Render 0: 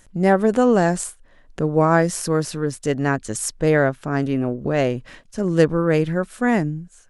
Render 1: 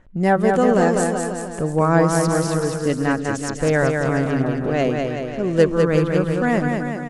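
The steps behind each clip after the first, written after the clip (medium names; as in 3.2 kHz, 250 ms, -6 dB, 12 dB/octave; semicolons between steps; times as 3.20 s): phaser 0.49 Hz, delay 4 ms, feedback 26%; level-controlled noise filter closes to 1.8 kHz, open at -16.5 dBFS; bouncing-ball echo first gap 200 ms, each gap 0.9×, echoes 5; trim -1 dB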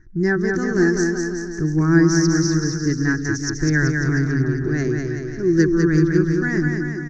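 FFT filter 150 Hz 0 dB, 240 Hz -11 dB, 350 Hz +6 dB, 530 Hz -28 dB, 1.2 kHz -13 dB, 1.7 kHz +2 dB, 2.9 kHz -26 dB, 5.9 kHz +8 dB, 8.6 kHz -30 dB; trim +4 dB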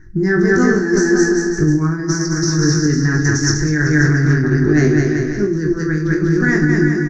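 compressor with a negative ratio -21 dBFS, ratio -1; on a send: reverse bouncing-ball echo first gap 20 ms, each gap 1.15×, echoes 5; on the sum: trim +4.5 dB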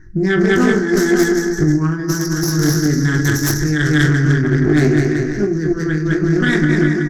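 self-modulated delay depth 0.16 ms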